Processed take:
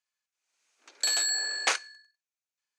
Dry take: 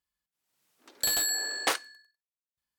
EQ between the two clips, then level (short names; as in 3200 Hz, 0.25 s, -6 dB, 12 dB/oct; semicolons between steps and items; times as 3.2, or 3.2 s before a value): speaker cabinet 440–9000 Hz, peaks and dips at 1500 Hz +4 dB, 2400 Hz +8 dB, 4400 Hz +3 dB, 6400 Hz +9 dB; -1.5 dB